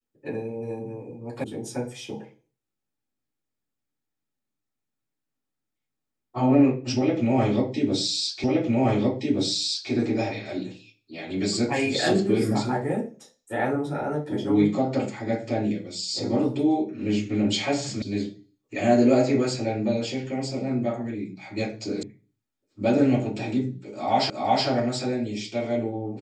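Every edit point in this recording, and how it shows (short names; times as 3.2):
1.44 sound cut off
8.44 repeat of the last 1.47 s
18.02 sound cut off
22.03 sound cut off
24.3 repeat of the last 0.37 s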